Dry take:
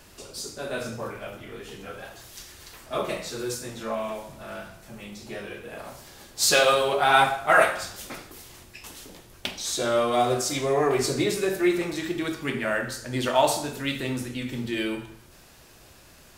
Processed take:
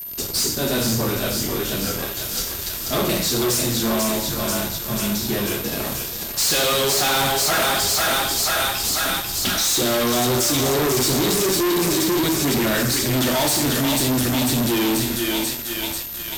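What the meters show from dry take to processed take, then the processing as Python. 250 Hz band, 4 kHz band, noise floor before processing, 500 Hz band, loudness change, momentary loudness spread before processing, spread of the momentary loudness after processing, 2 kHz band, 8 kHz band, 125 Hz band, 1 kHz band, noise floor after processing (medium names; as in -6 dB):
+9.0 dB, +10.5 dB, -52 dBFS, +2.5 dB, +5.5 dB, 23 LU, 6 LU, +3.0 dB, +12.0 dB, +10.5 dB, +1.0 dB, -30 dBFS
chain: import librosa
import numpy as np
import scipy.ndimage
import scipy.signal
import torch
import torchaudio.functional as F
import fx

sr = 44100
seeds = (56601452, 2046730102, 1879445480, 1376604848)

y = fx.band_shelf(x, sr, hz=1100.0, db=-10.0, octaves=2.9)
y = fx.echo_thinned(y, sr, ms=490, feedback_pct=70, hz=490.0, wet_db=-6)
y = fx.fuzz(y, sr, gain_db=40.0, gate_db=-49.0)
y = y + 10.0 ** (-25.0 / 20.0) * np.sin(2.0 * np.pi * 13000.0 * np.arange(len(y)) / sr)
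y = y * 10.0 ** (-5.0 / 20.0)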